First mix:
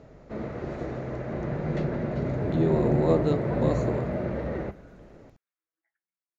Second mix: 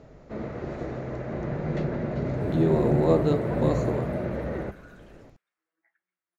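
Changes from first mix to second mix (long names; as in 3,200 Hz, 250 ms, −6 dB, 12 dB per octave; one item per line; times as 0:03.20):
speech: send +8.0 dB
second sound +11.0 dB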